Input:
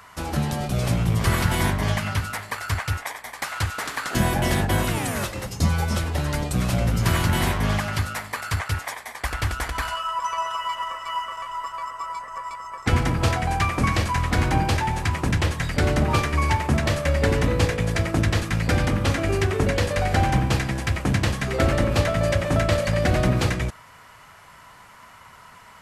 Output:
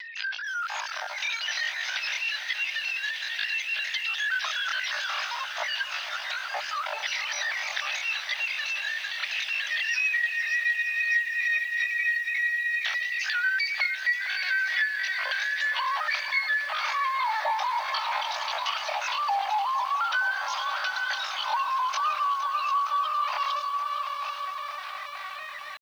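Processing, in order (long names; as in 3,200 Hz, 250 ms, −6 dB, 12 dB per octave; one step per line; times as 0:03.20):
three sine waves on the formant tracks
low-shelf EQ 410 Hz +8 dB
upward compression, threshold −34 dBFS
on a send: feedback delay with all-pass diffusion 765 ms, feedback 43%, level −9.5 dB
on the sum: linear-prediction vocoder at 8 kHz pitch kept
Chebyshev high-pass with heavy ripple 300 Hz, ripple 3 dB
downward compressor 5 to 1, threshold −25 dBFS, peak gain reduction 16.5 dB
pitch shifter +11.5 semitones
feedback echo at a low word length 462 ms, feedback 80%, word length 8 bits, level −12.5 dB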